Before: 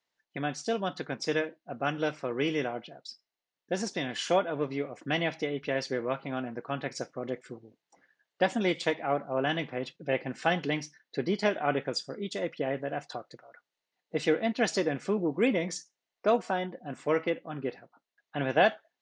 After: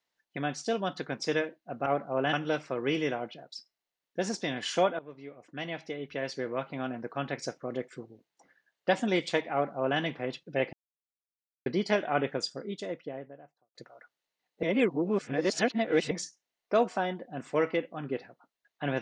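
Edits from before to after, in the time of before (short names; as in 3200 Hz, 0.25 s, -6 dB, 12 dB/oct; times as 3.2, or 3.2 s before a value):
4.52–6.56 fade in, from -18 dB
9.06–9.53 copy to 1.86
10.26–11.19 mute
11.89–13.28 studio fade out
14.16–15.64 reverse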